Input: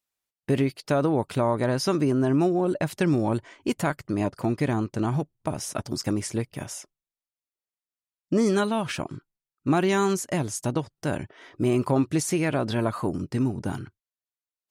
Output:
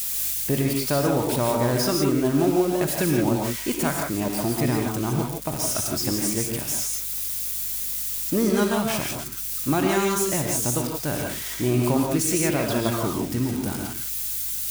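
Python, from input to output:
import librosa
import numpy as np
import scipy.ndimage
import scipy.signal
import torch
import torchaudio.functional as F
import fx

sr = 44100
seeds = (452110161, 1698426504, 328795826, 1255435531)

y = x + 0.5 * 10.0 ** (-22.0 / 20.0) * np.diff(np.sign(x), prepend=np.sign(x[:1]))
y = fx.add_hum(y, sr, base_hz=50, snr_db=26)
y = fx.rev_gated(y, sr, seeds[0], gate_ms=190, shape='rising', drr_db=0.5)
y = y * librosa.db_to_amplitude(-1.0)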